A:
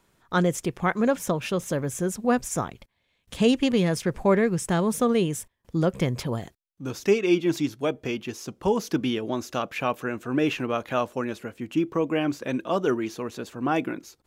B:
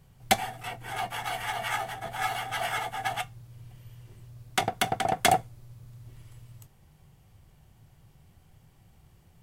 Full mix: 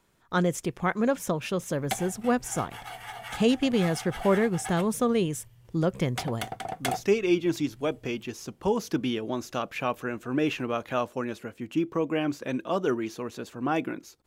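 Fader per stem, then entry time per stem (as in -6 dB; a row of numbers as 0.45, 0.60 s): -2.5, -8.0 dB; 0.00, 1.60 s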